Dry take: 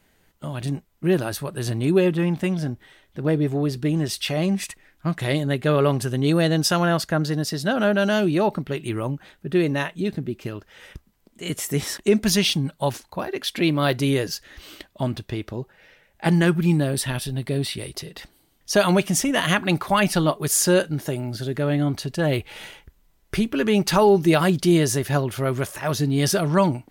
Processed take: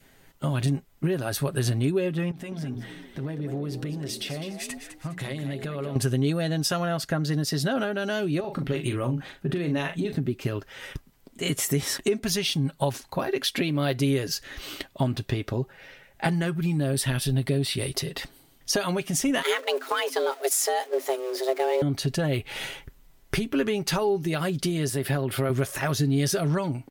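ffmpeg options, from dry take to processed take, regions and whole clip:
ffmpeg -i in.wav -filter_complex "[0:a]asettb=1/sr,asplit=3[link_01][link_02][link_03];[link_01]atrim=end=2.314[link_04];[link_02]atrim=start=2.31:end=5.96,asetpts=PTS-STARTPTS,afade=type=in:duration=0.004:curve=qsin,afade=type=out:start_time=3.646:duration=0.004:curve=qsin,bandreject=frequency=60:width_type=h:width=6,bandreject=frequency=120:width_type=h:width=6,bandreject=frequency=180:width_type=h:width=6,bandreject=frequency=240:width_type=h:width=6,bandreject=frequency=300:width_type=h:width=6,bandreject=frequency=360:width_type=h:width=6,bandreject=frequency=420:width_type=h:width=6,bandreject=frequency=480:width_type=h:width=6,acompressor=threshold=-35dB:ratio=8:attack=3.2:release=140:knee=1:detection=peak,asplit=5[link_05][link_06][link_07][link_08][link_09];[link_06]adelay=205,afreqshift=56,volume=-10dB[link_10];[link_07]adelay=410,afreqshift=112,volume=-18.6dB[link_11];[link_08]adelay=615,afreqshift=168,volume=-27.3dB[link_12];[link_09]adelay=820,afreqshift=224,volume=-35.9dB[link_13];[link_05][link_10][link_11][link_12][link_13]amix=inputs=5:normalize=0,atrim=end_sample=160965[link_14];[link_03]atrim=start=5.956[link_15];[link_04][link_14]acrossfade=duration=0.004:curve1=hsin:curve2=qsin[link_16];[link_16][link_15]acrossfade=duration=0.004:curve1=qsin:curve2=hsin,asettb=1/sr,asplit=3[link_17][link_18][link_19];[link_17]atrim=end=8.404[link_20];[link_18]atrim=start=8.4:end=10.12,asetpts=PTS-STARTPTS,afade=type=in:duration=0.004:curve=qsin,afade=type=out:start_time=1.716:duration=0.004:curve=qsin,highshelf=frequency=8200:gain=-4.5,acompressor=threshold=-26dB:ratio=4:attack=3.2:release=140:knee=1:detection=peak,asplit=2[link_21][link_22];[link_22]adelay=40,volume=-8dB[link_23];[link_21][link_23]amix=inputs=2:normalize=0,atrim=end_sample=75852[link_24];[link_19]atrim=start=10.116[link_25];[link_20][link_24]acrossfade=duration=0.004:curve1=hsin:curve2=qsin[link_26];[link_26][link_25]acrossfade=duration=0.004:curve1=qsin:curve2=hsin,asettb=1/sr,asplit=3[link_27][link_28][link_29];[link_27]atrim=end=19.424[link_30];[link_28]atrim=start=19.42:end=21.82,asetpts=PTS-STARTPTS,afade=type=in:duration=0.004:curve=qsin,afade=type=out:start_time=2.396:duration=0.004:curve=qsin,aeval=exprs='val(0)+0.5*0.0376*sgn(val(0))':channel_layout=same,agate=range=-9dB:threshold=-24dB:ratio=16:release=100:detection=peak,afreqshift=260[link_31];[link_29]atrim=start=21.816[link_32];[link_30][link_31]acrossfade=duration=0.004:curve1=hsin:curve2=qsin[link_33];[link_33][link_32]acrossfade=duration=0.004:curve1=qsin:curve2=hsin,asettb=1/sr,asplit=3[link_34][link_35][link_36];[link_34]atrim=end=24.894[link_37];[link_35]atrim=start=24.89:end=25.5,asetpts=PTS-STARTPTS,afade=type=in:duration=0.004:curve=qsin,afade=type=out:start_time=0.606:duration=0.004:curve=qsin,highpass=120,equalizer=frequency=6300:width=4.7:gain=-14.5,acompressor=threshold=-25dB:ratio=2:attack=3.2:release=140:knee=1:detection=peak[link_38];[link_36]atrim=start=25.496[link_39];[link_37][link_38]acrossfade=duration=0.004:curve1=hsin:curve2=qsin[link_40];[link_40][link_39]acrossfade=duration=0.004:curve1=qsin:curve2=hsin,acompressor=threshold=-28dB:ratio=6,adynamicequalizer=threshold=0.00224:dfrequency=960:dqfactor=3.5:tfrequency=960:tqfactor=3.5:attack=5:release=100:ratio=0.375:range=2.5:mode=cutabove:tftype=bell,aecho=1:1:7.4:0.41,volume=4.5dB" out.wav

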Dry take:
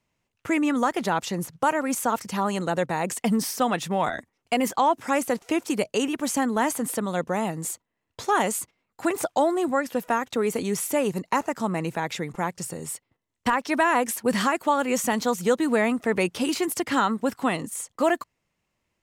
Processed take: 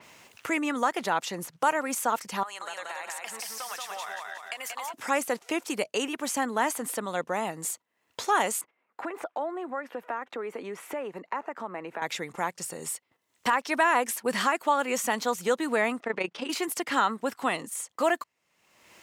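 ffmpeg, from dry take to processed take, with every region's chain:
ffmpeg -i in.wav -filter_complex "[0:a]asettb=1/sr,asplit=3[link_01][link_02][link_03];[link_01]atrim=end=2.434[link_04];[link_02]atrim=start=2.43:end=4.94,asetpts=PTS-STARTPTS,afade=type=in:duration=0.004:curve=qsin,afade=type=out:start_time=2.506:duration=0.004:curve=qsin,highpass=980,acompressor=threshold=-33dB:ratio=6:attack=3.2:release=140:knee=1:detection=peak,aecho=1:1:181|362|543|724|905:0.708|0.297|0.125|0.0525|0.022,atrim=end_sample=110691[link_05];[link_03]atrim=start=4.936[link_06];[link_04][link_05]acrossfade=duration=0.004:curve1=hsin:curve2=qsin[link_07];[link_07][link_06]acrossfade=duration=0.004:curve1=qsin:curve2=hsin,asettb=1/sr,asplit=3[link_08][link_09][link_10];[link_08]atrim=end=8.614[link_11];[link_09]atrim=start=8.61:end=12.02,asetpts=PTS-STARTPTS,afade=type=in:duration=0.004:curve=qsin,afade=type=out:start_time=3.406:duration=0.004:curve=qsin,acompressor=threshold=-30dB:ratio=2:attack=3.2:release=140:knee=1:detection=peak,acrossover=split=220 2500:gain=0.224 1 0.0794[link_12][link_13][link_14];[link_12][link_13][link_14]amix=inputs=3:normalize=0[link_15];[link_10]atrim=start=12.016[link_16];[link_11][link_15]acrossfade=duration=0.004:curve1=hsin:curve2=qsin[link_17];[link_17][link_16]acrossfade=duration=0.004:curve1=qsin:curve2=hsin,asettb=1/sr,asplit=3[link_18][link_19][link_20];[link_18]atrim=end=16.004[link_21];[link_19]atrim=start=16:end=16.5,asetpts=PTS-STARTPTS,afade=type=in:duration=0.004:curve=qsin,afade=type=out:start_time=0.496:duration=0.004:curve=qsin,highpass=140,lowpass=4600,tremolo=f=28:d=0.71[link_22];[link_20]atrim=start=16.496[link_23];[link_21][link_22]acrossfade=duration=0.004:curve1=hsin:curve2=qsin[link_24];[link_24][link_23]acrossfade=duration=0.004:curve1=qsin:curve2=hsin,highpass=frequency=600:poles=1,acompressor=mode=upward:threshold=-31dB:ratio=2.5,adynamicequalizer=threshold=0.00631:dfrequency=3900:dqfactor=0.7:tfrequency=3900:tqfactor=0.7:attack=5:release=100:ratio=0.375:range=1.5:mode=cutabove:tftype=highshelf" out.wav

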